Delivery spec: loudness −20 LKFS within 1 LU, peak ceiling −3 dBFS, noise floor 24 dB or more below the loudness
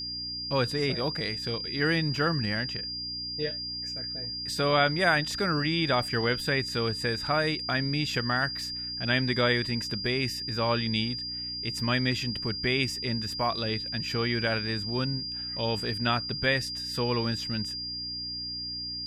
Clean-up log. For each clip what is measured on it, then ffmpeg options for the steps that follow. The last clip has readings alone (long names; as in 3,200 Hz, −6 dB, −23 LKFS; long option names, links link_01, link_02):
mains hum 60 Hz; hum harmonics up to 300 Hz; level of the hum −46 dBFS; interfering tone 4,800 Hz; level of the tone −33 dBFS; integrated loudness −28.0 LKFS; sample peak −10.0 dBFS; target loudness −20.0 LKFS
→ -af "bandreject=frequency=60:width_type=h:width=4,bandreject=frequency=120:width_type=h:width=4,bandreject=frequency=180:width_type=h:width=4,bandreject=frequency=240:width_type=h:width=4,bandreject=frequency=300:width_type=h:width=4"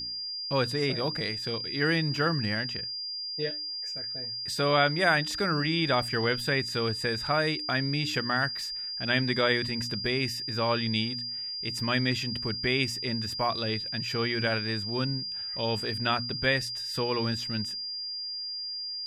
mains hum none found; interfering tone 4,800 Hz; level of the tone −33 dBFS
→ -af "bandreject=frequency=4800:width=30"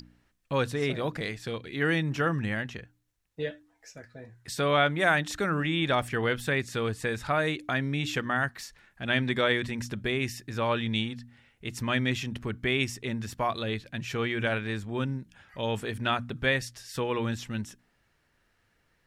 interfering tone none found; integrated loudness −29.5 LKFS; sample peak −10.0 dBFS; target loudness −20.0 LKFS
→ -af "volume=9.5dB,alimiter=limit=-3dB:level=0:latency=1"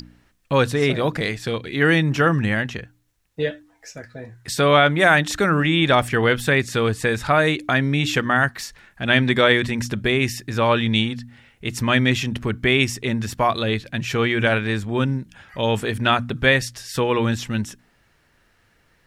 integrated loudness −20.0 LKFS; sample peak −3.0 dBFS; background noise floor −62 dBFS